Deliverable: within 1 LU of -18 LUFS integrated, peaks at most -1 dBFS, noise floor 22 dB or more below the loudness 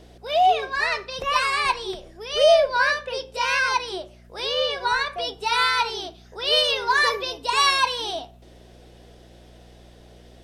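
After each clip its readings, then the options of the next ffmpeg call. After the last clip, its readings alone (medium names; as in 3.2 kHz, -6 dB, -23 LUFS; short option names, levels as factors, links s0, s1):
hum 60 Hz; highest harmonic 240 Hz; hum level -48 dBFS; loudness -21.5 LUFS; peak level -5.5 dBFS; loudness target -18.0 LUFS
-> -af "bandreject=f=60:t=h:w=4,bandreject=f=120:t=h:w=4,bandreject=f=180:t=h:w=4,bandreject=f=240:t=h:w=4"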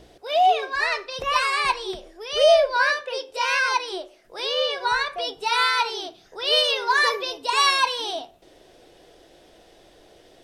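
hum not found; loudness -21.5 LUFS; peak level -6.0 dBFS; loudness target -18.0 LUFS
-> -af "volume=1.5"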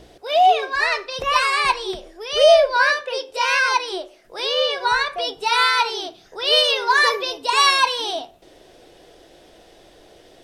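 loudness -18.0 LUFS; peak level -2.5 dBFS; noise floor -50 dBFS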